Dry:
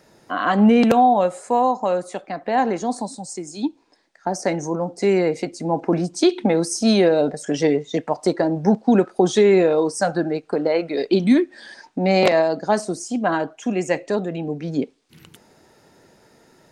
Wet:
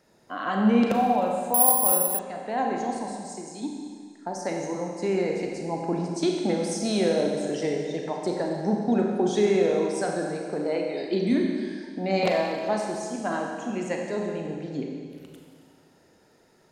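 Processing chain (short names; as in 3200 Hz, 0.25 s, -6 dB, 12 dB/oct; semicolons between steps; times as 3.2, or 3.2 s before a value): Schroeder reverb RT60 2 s, combs from 30 ms, DRR 0.5 dB; 1.54–2.19 careless resampling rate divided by 4×, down filtered, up zero stuff; gain -9.5 dB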